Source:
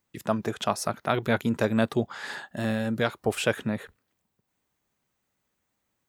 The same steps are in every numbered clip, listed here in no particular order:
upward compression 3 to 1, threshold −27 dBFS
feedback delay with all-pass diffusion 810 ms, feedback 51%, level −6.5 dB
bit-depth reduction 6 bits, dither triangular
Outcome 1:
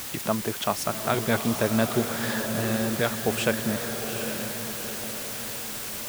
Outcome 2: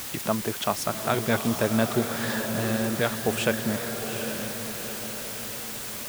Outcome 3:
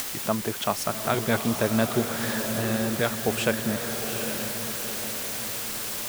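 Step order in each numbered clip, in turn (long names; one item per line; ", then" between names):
upward compression, then bit-depth reduction, then feedback delay with all-pass diffusion
upward compression, then feedback delay with all-pass diffusion, then bit-depth reduction
bit-depth reduction, then upward compression, then feedback delay with all-pass diffusion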